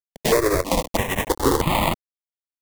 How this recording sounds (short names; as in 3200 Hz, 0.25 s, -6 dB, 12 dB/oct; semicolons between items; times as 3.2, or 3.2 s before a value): aliases and images of a low sample rate 1500 Hz, jitter 20%; chopped level 1.4 Hz, depth 60%, duty 85%; a quantiser's noise floor 6-bit, dither none; notches that jump at a steady rate 3.1 Hz 330–1600 Hz